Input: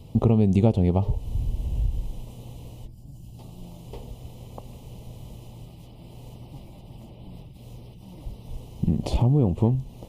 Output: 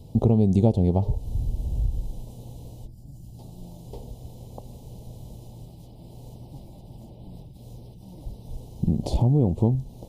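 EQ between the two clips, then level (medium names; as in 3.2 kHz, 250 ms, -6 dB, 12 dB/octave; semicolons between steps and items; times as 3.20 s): high-order bell 1.8 kHz -11 dB; 0.0 dB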